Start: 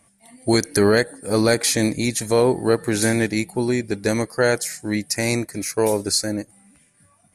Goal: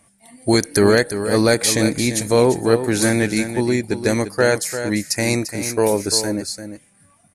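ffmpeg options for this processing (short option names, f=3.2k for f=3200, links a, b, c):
-af "aecho=1:1:345:0.316,volume=2dB"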